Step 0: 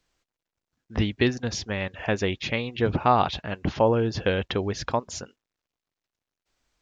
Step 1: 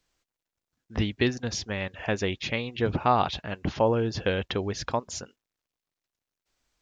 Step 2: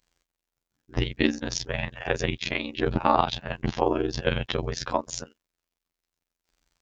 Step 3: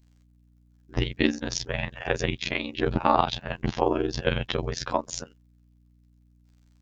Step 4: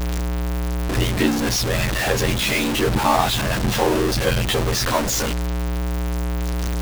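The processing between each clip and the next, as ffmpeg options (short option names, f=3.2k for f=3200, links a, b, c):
-af "highshelf=f=5k:g=4,volume=-2.5dB"
-af "afftfilt=real='hypot(re,im)*cos(PI*b)':imag='0':win_size=2048:overlap=0.75,aeval=exprs='val(0)*sin(2*PI*32*n/s)':c=same,volume=8dB"
-af "aeval=exprs='val(0)+0.00126*(sin(2*PI*60*n/s)+sin(2*PI*2*60*n/s)/2+sin(2*PI*3*60*n/s)/3+sin(2*PI*4*60*n/s)/4+sin(2*PI*5*60*n/s)/5)':c=same"
-af "aeval=exprs='val(0)+0.5*0.15*sgn(val(0))':c=same"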